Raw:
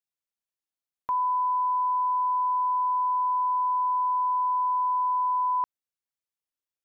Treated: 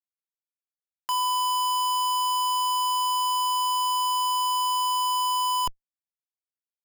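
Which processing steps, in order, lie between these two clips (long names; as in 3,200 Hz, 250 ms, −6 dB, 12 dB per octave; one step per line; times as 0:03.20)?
Bessel high-pass filter 800 Hz, order 4
ambience of single reflections 26 ms −10.5 dB, 36 ms −4.5 dB
comparator with hysteresis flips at −38.5 dBFS
level −1.5 dB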